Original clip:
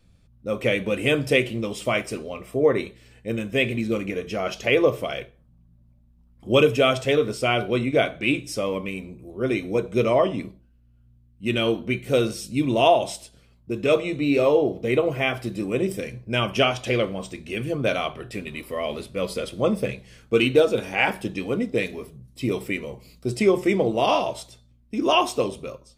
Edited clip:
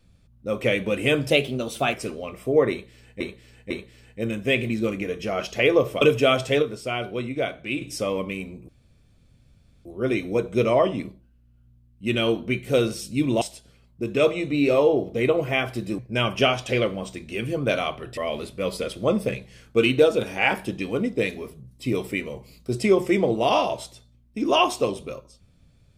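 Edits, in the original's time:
1.3–2.01 speed 112%
2.78–3.28 loop, 3 plays
5.09–6.58 cut
7.19–8.38 gain -6 dB
9.25 insert room tone 1.17 s
12.81–13.1 cut
15.67–16.16 cut
18.35–18.74 cut

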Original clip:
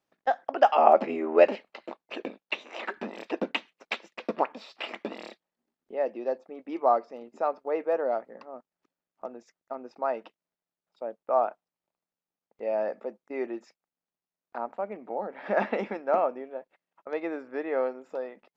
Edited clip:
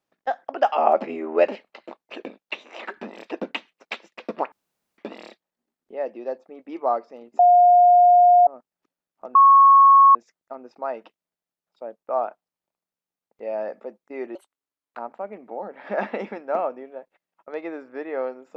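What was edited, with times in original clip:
4.52–4.98 room tone
7.39–8.47 bleep 711 Hz -10 dBFS
9.35 add tone 1100 Hz -8.5 dBFS 0.80 s
13.55–14.56 speed 163%

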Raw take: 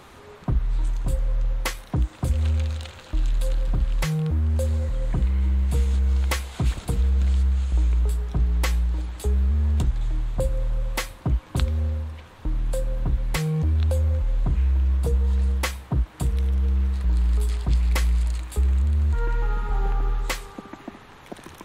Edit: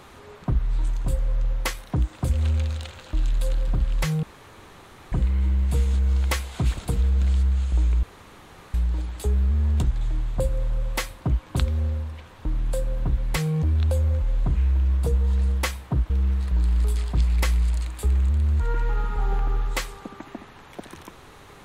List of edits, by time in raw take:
4.23–5.12 room tone
8.03–8.74 room tone
16.1–16.63 cut

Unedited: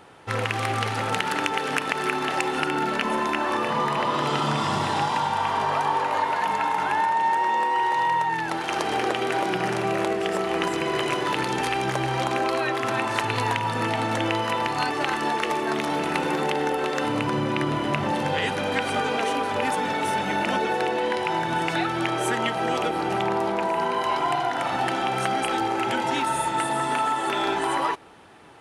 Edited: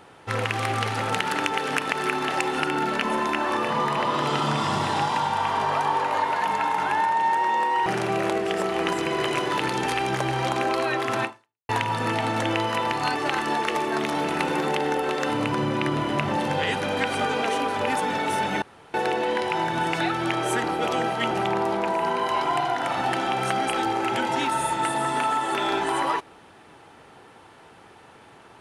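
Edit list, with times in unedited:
7.86–9.61 cut
12.99–13.44 fade out exponential
20.37–20.69 room tone
22.39–23.06 reverse

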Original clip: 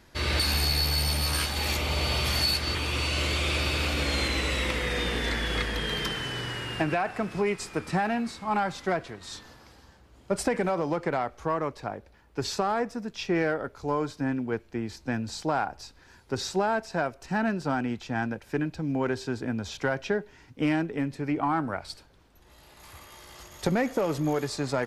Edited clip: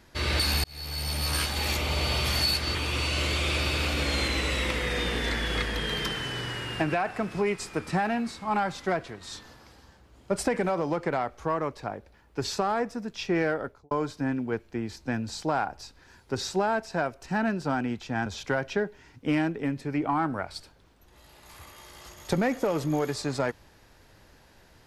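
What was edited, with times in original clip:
0.64–1.36 fade in
13.62–13.91 studio fade out
18.26–19.6 cut

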